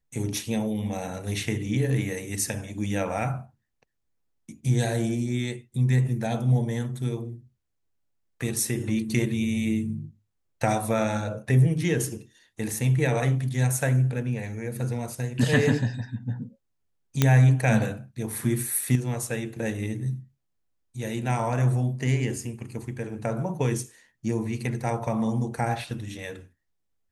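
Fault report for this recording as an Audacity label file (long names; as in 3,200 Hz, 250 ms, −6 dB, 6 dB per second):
17.220000	17.220000	click −5 dBFS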